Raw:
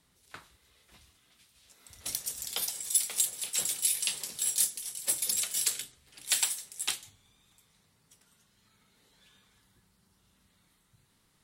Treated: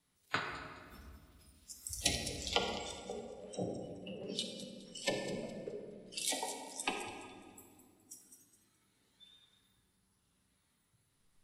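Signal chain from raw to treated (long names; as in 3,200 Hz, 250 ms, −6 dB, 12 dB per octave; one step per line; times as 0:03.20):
treble cut that deepens with the level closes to 640 Hz, closed at −29.5 dBFS
steady tone 10,000 Hz −77 dBFS
noise reduction from a noise print of the clip's start 22 dB
delay with a high-pass on its return 209 ms, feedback 31%, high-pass 4,800 Hz, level −8.5 dB
tape wow and flutter 21 cents
on a send at −1.5 dB: convolution reverb RT60 2.2 s, pre-delay 7 ms
on the sum: level +11.5 dB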